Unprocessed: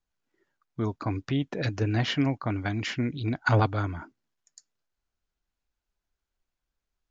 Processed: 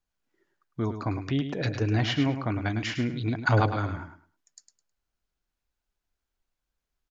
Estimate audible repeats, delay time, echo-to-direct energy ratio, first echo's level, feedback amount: 2, 105 ms, −9.0 dB, −9.0 dB, 21%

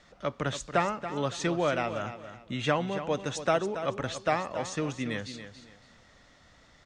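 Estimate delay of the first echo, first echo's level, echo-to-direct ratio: 280 ms, −11.0 dB, −10.5 dB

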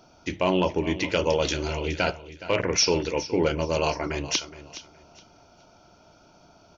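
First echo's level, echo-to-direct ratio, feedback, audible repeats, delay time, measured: −15.0 dB, −14.5 dB, 24%, 2, 418 ms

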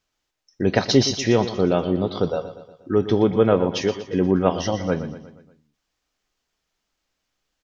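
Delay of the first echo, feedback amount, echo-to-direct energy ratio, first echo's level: 119 ms, 52%, −11.0 dB, −12.5 dB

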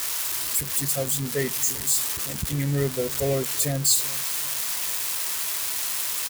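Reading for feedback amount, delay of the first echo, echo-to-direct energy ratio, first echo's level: 42%, 388 ms, −20.0 dB, −21.0 dB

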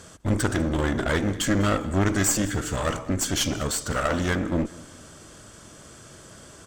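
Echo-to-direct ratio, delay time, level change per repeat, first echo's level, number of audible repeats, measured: −20.5 dB, 198 ms, −8.0 dB, −21.0 dB, 2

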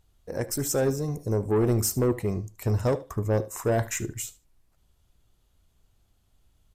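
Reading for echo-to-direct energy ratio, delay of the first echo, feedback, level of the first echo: −18.5 dB, 75 ms, 16%, −18.5 dB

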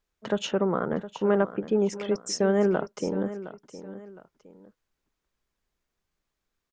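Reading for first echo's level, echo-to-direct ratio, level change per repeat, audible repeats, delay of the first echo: −14.0 dB, −13.5 dB, −9.0 dB, 2, 713 ms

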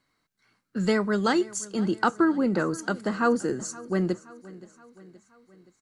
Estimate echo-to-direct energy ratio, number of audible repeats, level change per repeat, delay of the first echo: −18.5 dB, 3, −5.5 dB, 523 ms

